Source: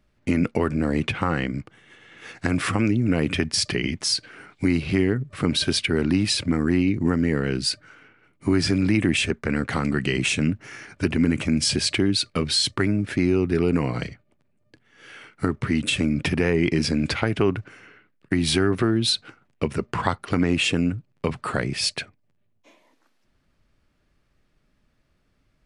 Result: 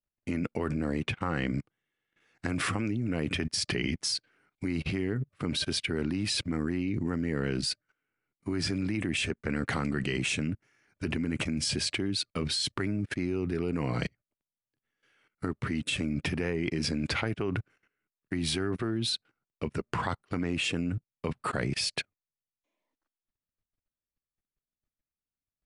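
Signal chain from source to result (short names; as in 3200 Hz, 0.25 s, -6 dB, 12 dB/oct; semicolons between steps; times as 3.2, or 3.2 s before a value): level quantiser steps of 16 dB; upward expander 2.5:1, over -47 dBFS; gain +4.5 dB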